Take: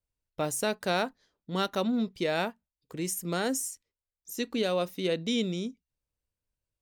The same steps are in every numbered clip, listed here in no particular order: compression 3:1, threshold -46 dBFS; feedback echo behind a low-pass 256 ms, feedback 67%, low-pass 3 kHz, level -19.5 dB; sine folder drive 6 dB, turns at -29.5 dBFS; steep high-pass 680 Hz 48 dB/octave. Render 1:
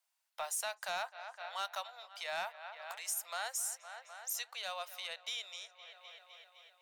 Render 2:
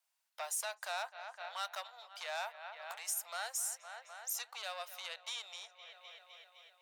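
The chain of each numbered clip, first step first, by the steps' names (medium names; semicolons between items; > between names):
feedback echo behind a low-pass > compression > steep high-pass > sine folder; feedback echo behind a low-pass > compression > sine folder > steep high-pass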